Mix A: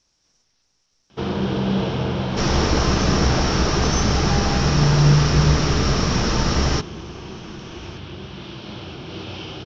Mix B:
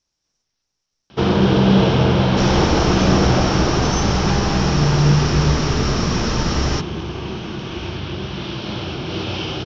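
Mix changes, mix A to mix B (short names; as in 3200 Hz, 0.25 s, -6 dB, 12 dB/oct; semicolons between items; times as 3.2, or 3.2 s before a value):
speech -6.5 dB; first sound +9.5 dB; reverb: off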